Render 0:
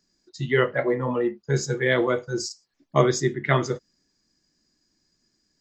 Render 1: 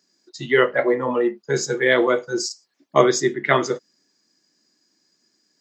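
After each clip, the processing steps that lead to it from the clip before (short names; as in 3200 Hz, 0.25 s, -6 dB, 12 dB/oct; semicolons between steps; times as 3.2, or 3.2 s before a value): HPF 260 Hz 12 dB/oct; gain +5 dB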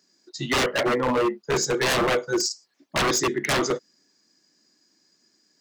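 wavefolder -18 dBFS; gain +1.5 dB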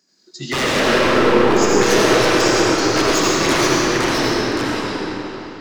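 echoes that change speed 87 ms, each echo -2 st, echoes 2; digital reverb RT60 3.7 s, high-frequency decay 0.8×, pre-delay 40 ms, DRR -5.5 dB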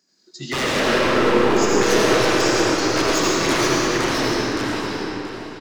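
echo 0.679 s -13 dB; gain -3 dB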